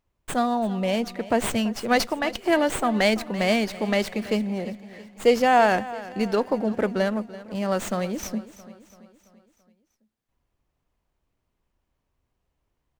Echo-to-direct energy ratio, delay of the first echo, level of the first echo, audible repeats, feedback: −15.5 dB, 335 ms, −17.0 dB, 4, 52%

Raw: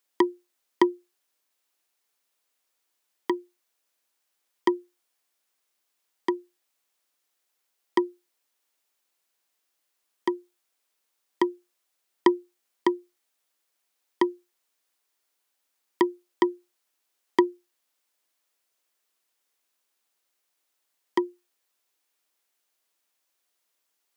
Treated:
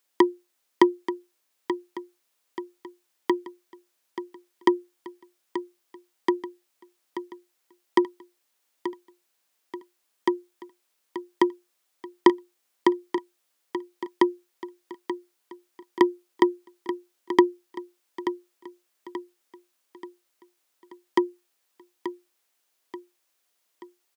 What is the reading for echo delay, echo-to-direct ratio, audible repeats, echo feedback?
882 ms, −10.0 dB, 4, 46%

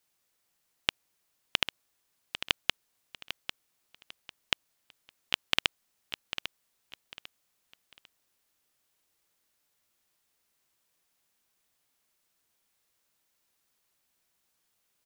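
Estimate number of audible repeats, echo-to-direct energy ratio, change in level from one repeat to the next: 3, −9.5 dB, −10.5 dB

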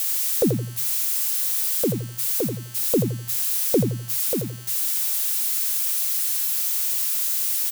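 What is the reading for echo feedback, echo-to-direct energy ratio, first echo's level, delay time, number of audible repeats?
24%, −6.5 dB, −7.0 dB, 84 ms, 3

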